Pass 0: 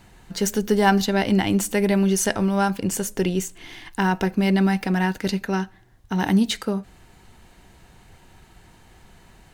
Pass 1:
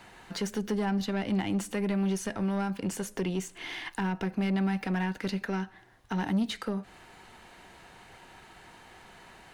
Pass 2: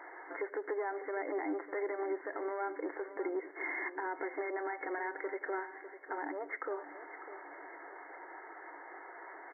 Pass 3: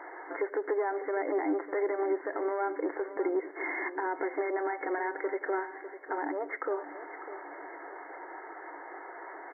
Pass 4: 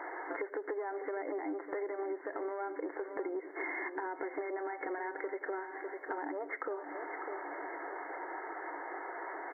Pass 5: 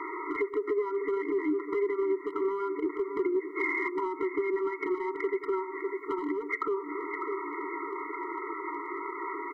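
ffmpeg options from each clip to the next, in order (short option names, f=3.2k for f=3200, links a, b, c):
-filter_complex "[0:a]aexciter=amount=1.2:drive=3:freq=9.6k,acrossover=split=260[a][b];[b]acompressor=threshold=-33dB:ratio=6[c];[a][c]amix=inputs=2:normalize=0,asplit=2[d][e];[e]highpass=f=720:p=1,volume=19dB,asoftclip=type=tanh:threshold=-11.5dB[f];[d][f]amix=inputs=2:normalize=0,lowpass=f=2.7k:p=1,volume=-6dB,volume=-7.5dB"
-filter_complex "[0:a]afftfilt=real='re*between(b*sr/4096,280,2200)':imag='im*between(b*sr/4096,280,2200)':win_size=4096:overlap=0.75,alimiter=level_in=8.5dB:limit=-24dB:level=0:latency=1:release=130,volume=-8.5dB,asplit=2[a][b];[b]aecho=0:1:601|1202|1803|2404:0.237|0.104|0.0459|0.0202[c];[a][c]amix=inputs=2:normalize=0,volume=4dB"
-af "highshelf=f=2k:g=-8.5,volume=7dB"
-af "acompressor=threshold=-38dB:ratio=6,volume=2.5dB"
-filter_complex "[0:a]asplit=2[a][b];[b]asoftclip=type=hard:threshold=-32.5dB,volume=-6dB[c];[a][c]amix=inputs=2:normalize=0,afftfilt=real='re*eq(mod(floor(b*sr/1024/470),2),0)':imag='im*eq(mod(floor(b*sr/1024/470),2),0)':win_size=1024:overlap=0.75,volume=6.5dB"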